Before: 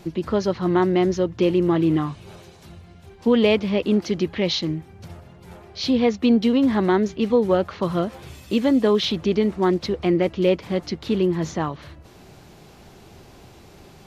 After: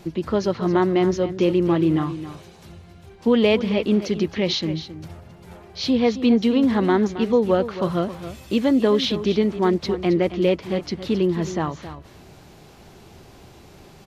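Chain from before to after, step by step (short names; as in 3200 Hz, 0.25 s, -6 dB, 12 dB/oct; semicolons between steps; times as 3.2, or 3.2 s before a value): echo 0.269 s -12.5 dB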